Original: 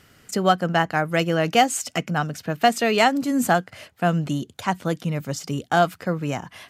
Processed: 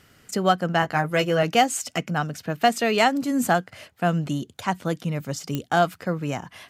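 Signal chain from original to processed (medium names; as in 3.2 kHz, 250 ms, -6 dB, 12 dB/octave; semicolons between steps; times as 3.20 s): 0.81–1.43 s: doubling 14 ms -4 dB; clicks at 5.55 s, -11 dBFS; trim -1.5 dB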